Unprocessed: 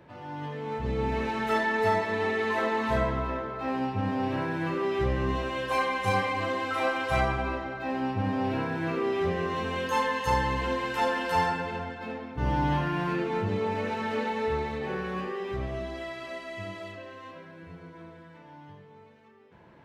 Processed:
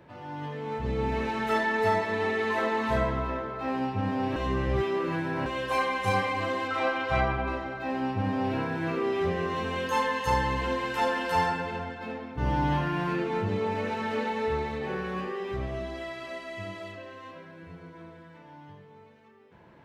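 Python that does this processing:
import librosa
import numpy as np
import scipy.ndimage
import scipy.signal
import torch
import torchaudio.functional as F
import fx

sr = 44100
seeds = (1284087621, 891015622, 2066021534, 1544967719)

y = fx.lowpass(x, sr, hz=fx.line((6.67, 6500.0), (7.46, 3200.0)), slope=12, at=(6.67, 7.46), fade=0.02)
y = fx.edit(y, sr, fx.reverse_span(start_s=4.36, length_s=1.1), tone=tone)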